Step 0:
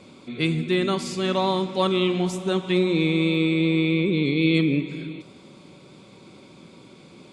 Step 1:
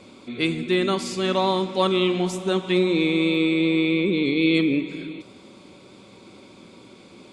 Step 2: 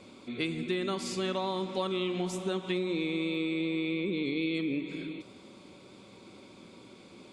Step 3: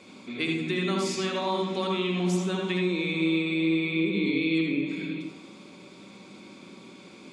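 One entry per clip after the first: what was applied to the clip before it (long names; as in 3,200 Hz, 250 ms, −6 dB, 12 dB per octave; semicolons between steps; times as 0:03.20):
parametric band 150 Hz −13.5 dB 0.26 octaves; level +1.5 dB
downward compressor, threshold −23 dBFS, peak gain reduction 8 dB; level −5 dB
convolution reverb RT60 0.40 s, pre-delay 67 ms, DRR 2 dB; level +2.5 dB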